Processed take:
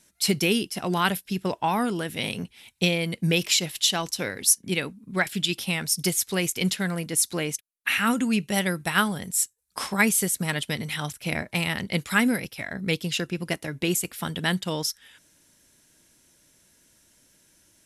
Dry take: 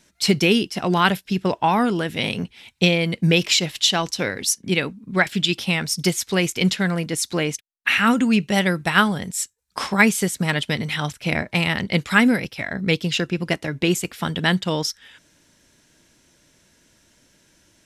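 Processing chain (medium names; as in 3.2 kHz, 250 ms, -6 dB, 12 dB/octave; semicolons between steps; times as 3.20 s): peaking EQ 11 kHz +13 dB 0.89 oct; trim -6 dB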